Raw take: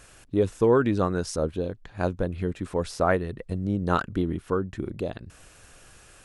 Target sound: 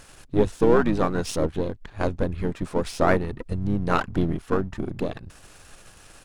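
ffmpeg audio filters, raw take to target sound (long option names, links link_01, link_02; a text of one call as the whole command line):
ffmpeg -i in.wav -filter_complex "[0:a]aeval=exprs='if(lt(val(0),0),0.447*val(0),val(0))':channel_layout=same,asplit=3[link_01][link_02][link_03];[link_02]asetrate=22050,aresample=44100,atempo=2,volume=-8dB[link_04];[link_03]asetrate=29433,aresample=44100,atempo=1.49831,volume=-9dB[link_05];[link_01][link_04][link_05]amix=inputs=3:normalize=0,volume=4dB" out.wav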